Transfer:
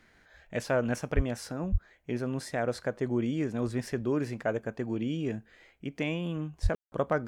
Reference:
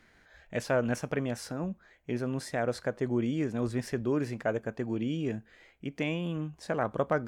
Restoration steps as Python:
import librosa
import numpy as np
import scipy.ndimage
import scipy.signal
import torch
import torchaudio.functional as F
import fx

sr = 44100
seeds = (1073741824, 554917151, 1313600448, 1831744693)

y = fx.fix_deplosive(x, sr, at_s=(1.15, 1.71, 6.62))
y = fx.fix_ambience(y, sr, seeds[0], print_start_s=0.0, print_end_s=0.5, start_s=6.75, end_s=6.92)